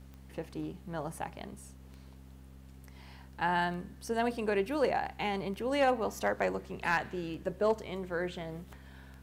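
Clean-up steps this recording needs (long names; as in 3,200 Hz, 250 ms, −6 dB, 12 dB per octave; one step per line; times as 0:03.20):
clipped peaks rebuilt −19 dBFS
click removal
hum removal 66 Hz, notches 4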